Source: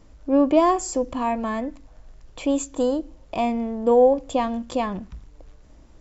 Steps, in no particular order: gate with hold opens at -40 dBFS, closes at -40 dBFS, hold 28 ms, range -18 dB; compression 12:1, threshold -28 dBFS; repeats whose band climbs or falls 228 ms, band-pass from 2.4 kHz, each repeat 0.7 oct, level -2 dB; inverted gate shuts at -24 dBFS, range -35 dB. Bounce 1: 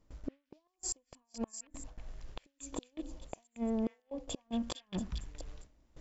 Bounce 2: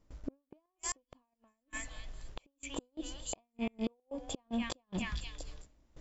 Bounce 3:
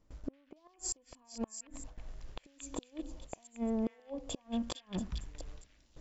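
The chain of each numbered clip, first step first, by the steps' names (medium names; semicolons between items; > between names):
compression > inverted gate > repeats whose band climbs or falls > gate with hold; repeats whose band climbs or falls > compression > inverted gate > gate with hold; gate with hold > compression > inverted gate > repeats whose band climbs or falls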